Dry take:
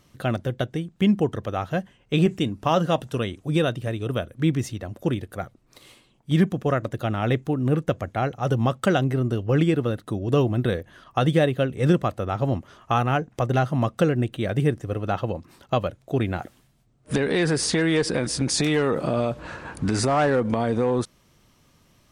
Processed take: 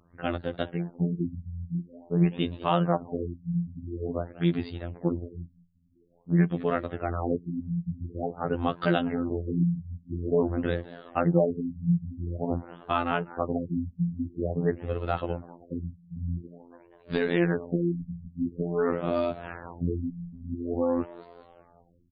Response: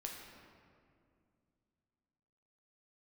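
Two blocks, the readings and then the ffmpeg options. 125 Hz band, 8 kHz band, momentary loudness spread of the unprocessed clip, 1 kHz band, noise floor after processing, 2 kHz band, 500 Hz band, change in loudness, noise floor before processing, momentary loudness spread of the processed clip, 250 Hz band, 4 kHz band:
-6.5 dB, under -40 dB, 8 LU, -6.0 dB, -60 dBFS, -7.5 dB, -5.5 dB, -5.5 dB, -61 dBFS, 12 LU, -4.5 dB, -11.5 dB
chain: -filter_complex "[0:a]asplit=6[a][b][c][d][e][f];[b]adelay=198,afreqshift=82,volume=-20dB[g];[c]adelay=396,afreqshift=164,volume=-24.7dB[h];[d]adelay=594,afreqshift=246,volume=-29.5dB[i];[e]adelay=792,afreqshift=328,volume=-34.2dB[j];[f]adelay=990,afreqshift=410,volume=-38.9dB[k];[a][g][h][i][j][k]amix=inputs=6:normalize=0,afftfilt=real='hypot(re,im)*cos(PI*b)':imag='0':win_size=2048:overlap=0.75,afftfilt=real='re*lt(b*sr/1024,210*pow(4900/210,0.5+0.5*sin(2*PI*0.48*pts/sr)))':imag='im*lt(b*sr/1024,210*pow(4900/210,0.5+0.5*sin(2*PI*0.48*pts/sr)))':win_size=1024:overlap=0.75"

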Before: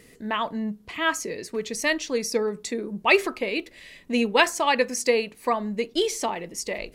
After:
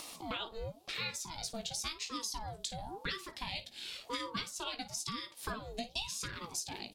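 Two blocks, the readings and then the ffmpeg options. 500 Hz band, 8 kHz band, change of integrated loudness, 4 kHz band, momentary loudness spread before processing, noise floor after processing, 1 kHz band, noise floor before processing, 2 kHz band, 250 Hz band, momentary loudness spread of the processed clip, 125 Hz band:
-22.5 dB, -8.0 dB, -14.5 dB, -8.0 dB, 11 LU, -58 dBFS, -15.5 dB, -53 dBFS, -17.5 dB, -18.5 dB, 4 LU, n/a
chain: -af "equalizer=f=270:w=1.3:g=-5,bandreject=f=60:t=h:w=6,bandreject=f=120:t=h:w=6,bandreject=f=180:t=h:w=6,bandreject=f=240:t=h:w=6,acompressor=mode=upward:threshold=-40dB:ratio=2.5,highshelf=f=2.7k:t=q:w=3:g=7.5,acompressor=threshold=-31dB:ratio=16,aecho=1:1:17|55:0.376|0.168,aeval=exprs='val(0)*sin(2*PI*500*n/s+500*0.55/0.95*sin(2*PI*0.95*n/s))':c=same,volume=-2.5dB"

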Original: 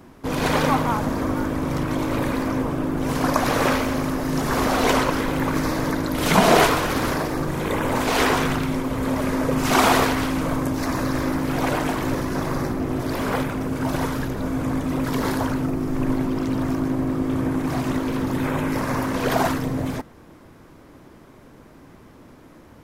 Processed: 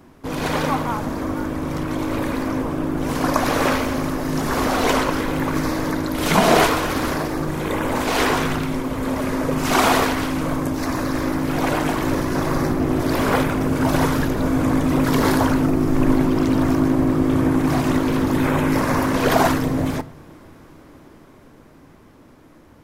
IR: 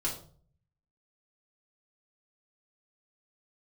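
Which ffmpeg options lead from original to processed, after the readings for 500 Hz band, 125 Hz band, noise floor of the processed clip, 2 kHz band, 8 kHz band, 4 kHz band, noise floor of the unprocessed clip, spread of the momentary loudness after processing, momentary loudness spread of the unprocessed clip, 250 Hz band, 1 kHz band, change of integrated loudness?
+2.0 dB, +2.0 dB, -48 dBFS, +1.5 dB, +1.5 dB, +1.0 dB, -48 dBFS, 7 LU, 6 LU, +3.0 dB, +1.5 dB, +2.0 dB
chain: -filter_complex "[0:a]dynaudnorm=f=220:g=21:m=9dB,asplit=2[a][b];[1:a]atrim=start_sample=2205[c];[b][c]afir=irnorm=-1:irlink=0,volume=-19dB[d];[a][d]amix=inputs=2:normalize=0,volume=-2.5dB"

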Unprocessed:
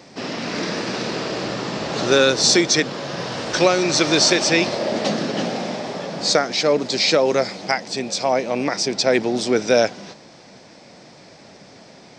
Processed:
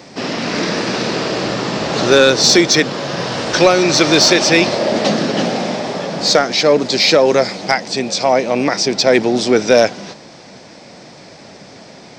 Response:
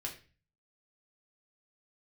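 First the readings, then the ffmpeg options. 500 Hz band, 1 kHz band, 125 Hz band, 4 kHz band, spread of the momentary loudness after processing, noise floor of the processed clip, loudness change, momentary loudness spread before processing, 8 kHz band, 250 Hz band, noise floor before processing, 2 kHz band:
+6.0 dB, +6.0 dB, +6.0 dB, +5.5 dB, 10 LU, -39 dBFS, +5.5 dB, 12 LU, +4.0 dB, +6.0 dB, -46 dBFS, +5.5 dB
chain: -filter_complex "[0:a]acrossover=split=7400[a][b];[b]acompressor=threshold=-44dB:ratio=4:attack=1:release=60[c];[a][c]amix=inputs=2:normalize=0,asplit=2[d][e];[e]aeval=exprs='0.631*sin(PI/2*1.58*val(0)/0.631)':c=same,volume=-10dB[f];[d][f]amix=inputs=2:normalize=0,volume=1.5dB"

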